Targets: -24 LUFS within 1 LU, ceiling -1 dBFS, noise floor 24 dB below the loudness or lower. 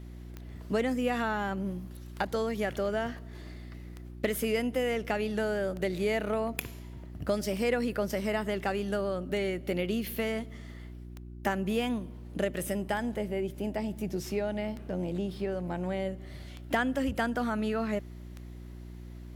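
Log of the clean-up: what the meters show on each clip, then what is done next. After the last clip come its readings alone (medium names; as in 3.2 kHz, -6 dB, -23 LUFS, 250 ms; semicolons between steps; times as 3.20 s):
clicks found 11; hum 60 Hz; highest harmonic 360 Hz; hum level -41 dBFS; loudness -32.0 LUFS; peak level -15.0 dBFS; loudness target -24.0 LUFS
-> de-click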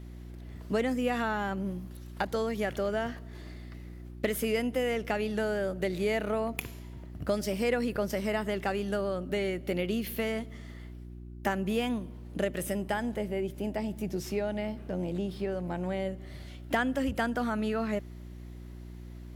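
clicks found 0; hum 60 Hz; highest harmonic 360 Hz; hum level -41 dBFS
-> de-hum 60 Hz, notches 6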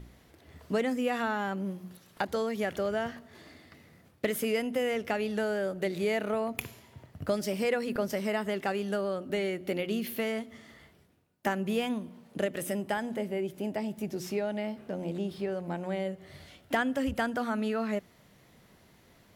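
hum not found; loudness -32.5 LUFS; peak level -15.0 dBFS; loudness target -24.0 LUFS
-> trim +8.5 dB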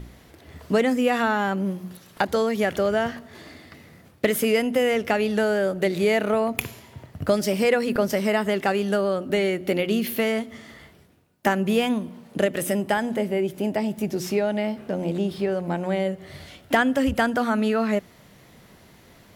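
loudness -24.0 LUFS; peak level -6.5 dBFS; noise floor -53 dBFS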